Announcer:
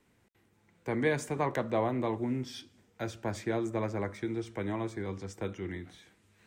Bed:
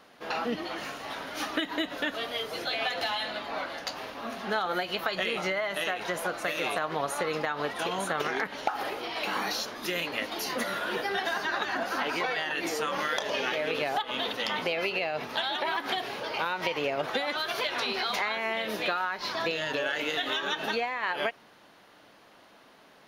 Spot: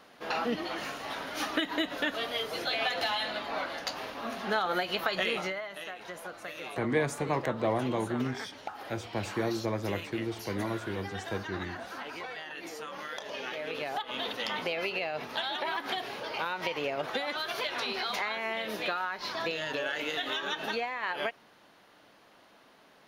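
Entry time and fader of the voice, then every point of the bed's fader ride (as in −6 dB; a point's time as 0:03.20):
5.90 s, +0.5 dB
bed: 0:05.33 0 dB
0:05.71 −10.5 dB
0:13.00 −10.5 dB
0:14.29 −3 dB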